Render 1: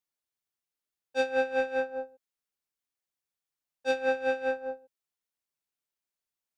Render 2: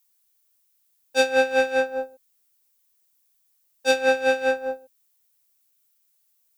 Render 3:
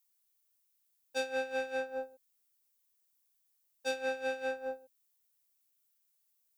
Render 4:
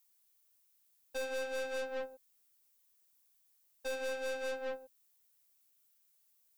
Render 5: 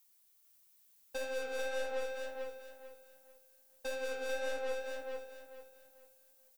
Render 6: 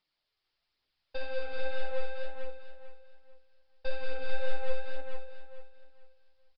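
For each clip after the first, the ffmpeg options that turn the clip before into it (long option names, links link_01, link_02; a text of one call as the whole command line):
ffmpeg -i in.wav -af "aemphasis=mode=production:type=75kf,volume=7dB" out.wav
ffmpeg -i in.wav -af "acompressor=threshold=-25dB:ratio=3,volume=-8.5dB" out.wav
ffmpeg -i in.wav -af "aeval=exprs='(tanh(112*val(0)+0.4)-tanh(0.4))/112':channel_layout=same,volume=5.5dB" out.wav
ffmpeg -i in.wav -filter_complex "[0:a]acompressor=threshold=-44dB:ratio=2,flanger=delay=5.5:depth=7.9:regen=71:speed=1.5:shape=sinusoidal,asplit=2[link_01][link_02];[link_02]aecho=0:1:442|884|1326|1768:0.668|0.194|0.0562|0.0163[link_03];[link_01][link_03]amix=inputs=2:normalize=0,volume=8dB" out.wav
ffmpeg -i in.wav -af "asubboost=boost=10.5:cutoff=66,aphaser=in_gain=1:out_gain=1:delay=2.8:decay=0.3:speed=1.2:type=triangular,aresample=11025,aresample=44100" out.wav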